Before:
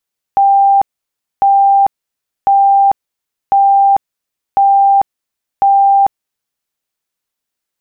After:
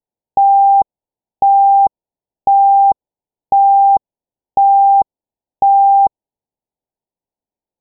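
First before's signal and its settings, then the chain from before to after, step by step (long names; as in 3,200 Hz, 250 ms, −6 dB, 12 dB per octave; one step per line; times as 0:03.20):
tone bursts 792 Hz, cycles 353, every 1.05 s, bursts 6, −5.5 dBFS
Butterworth low-pass 960 Hz 96 dB per octave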